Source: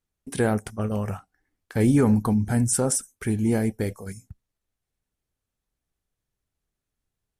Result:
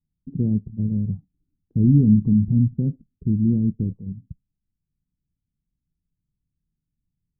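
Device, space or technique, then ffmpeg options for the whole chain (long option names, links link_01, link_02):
the neighbour's flat through the wall: -af "lowpass=frequency=270:width=0.5412,lowpass=frequency=270:width=1.3066,equalizer=frequency=160:width_type=o:width=0.56:gain=8,volume=3dB"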